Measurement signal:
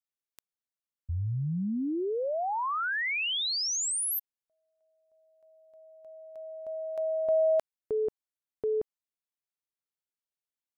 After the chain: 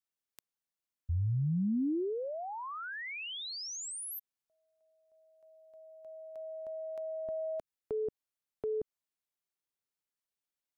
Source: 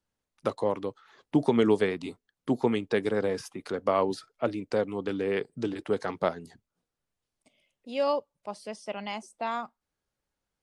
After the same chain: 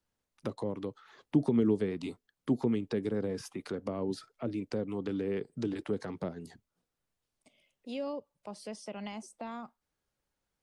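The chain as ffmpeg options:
-filter_complex "[0:a]acrossover=split=360[a][b];[b]acompressor=threshold=-40dB:ratio=8:attack=3.3:release=176:knee=2.83:detection=peak[c];[a][c]amix=inputs=2:normalize=0"

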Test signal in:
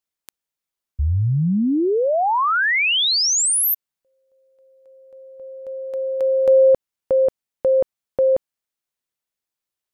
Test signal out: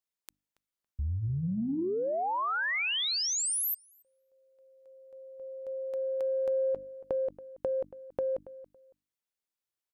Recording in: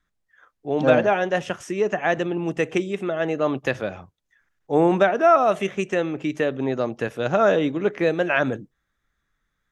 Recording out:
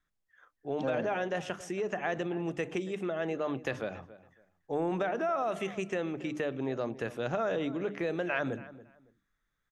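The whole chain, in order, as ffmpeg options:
-filter_complex "[0:a]bandreject=f=50:t=h:w=6,bandreject=f=100:t=h:w=6,bandreject=f=150:t=h:w=6,bandreject=f=200:t=h:w=6,bandreject=f=250:t=h:w=6,bandreject=f=300:t=h:w=6,acompressor=threshold=-25dB:ratio=4:attack=11:release=38:knee=6:detection=peak,asplit=2[a][b];[b]adelay=279,lowpass=f=2.1k:p=1,volume=-16.5dB,asplit=2[c][d];[d]adelay=279,lowpass=f=2.1k:p=1,volume=0.23[e];[a][c][e]amix=inputs=3:normalize=0,volume=-6.5dB"

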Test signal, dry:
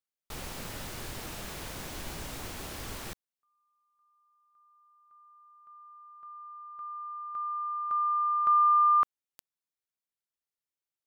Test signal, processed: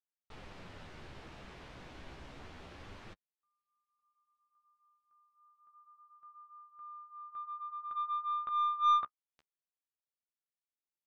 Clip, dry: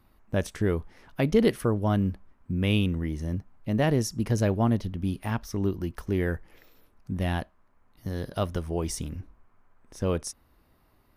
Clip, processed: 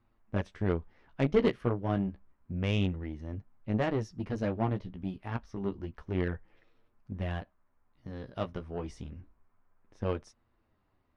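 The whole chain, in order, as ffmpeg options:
-af "flanger=delay=8.5:depth=7.9:regen=-18:speed=0.29:shape=sinusoidal,lowpass=3.3k,aeval=exprs='0.251*(cos(1*acos(clip(val(0)/0.251,-1,1)))-cos(1*PI/2))+0.0126*(cos(2*acos(clip(val(0)/0.251,-1,1)))-cos(2*PI/2))+0.0178*(cos(7*acos(clip(val(0)/0.251,-1,1)))-cos(7*PI/2))':c=same"

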